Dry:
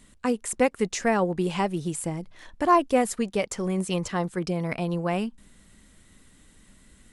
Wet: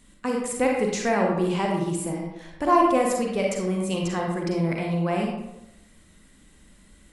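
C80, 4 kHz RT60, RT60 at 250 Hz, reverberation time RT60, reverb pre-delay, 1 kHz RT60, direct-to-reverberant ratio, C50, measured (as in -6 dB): 4.5 dB, 0.50 s, 0.85 s, 0.90 s, 37 ms, 0.90 s, -0.5 dB, 1.5 dB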